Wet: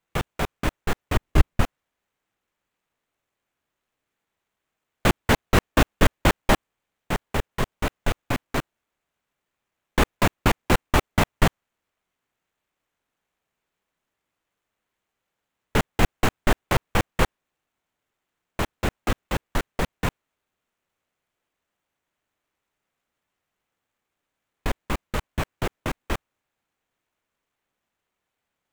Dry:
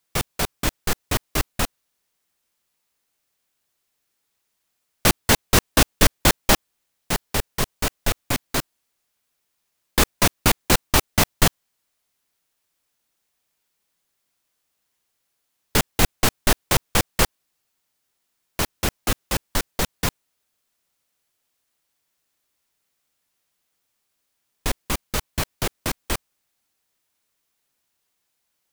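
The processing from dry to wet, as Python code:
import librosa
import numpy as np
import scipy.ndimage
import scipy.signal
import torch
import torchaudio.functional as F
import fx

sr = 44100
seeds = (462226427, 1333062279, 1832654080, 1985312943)

y = scipy.signal.medfilt(x, 9)
y = fx.low_shelf(y, sr, hz=210.0, db=11.5, at=(1.16, 1.61))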